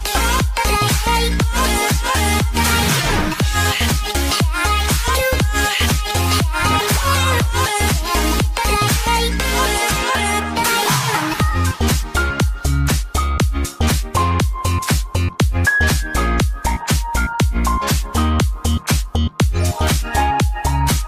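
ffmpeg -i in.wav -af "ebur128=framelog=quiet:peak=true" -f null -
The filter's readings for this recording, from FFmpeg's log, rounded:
Integrated loudness:
  I:         -17.0 LUFS
  Threshold: -27.0 LUFS
Loudness range:
  LRA:         2.3 LU
  Threshold: -37.0 LUFS
  LRA low:   -18.4 LUFS
  LRA high:  -16.1 LUFS
True peak:
  Peak:       -4.2 dBFS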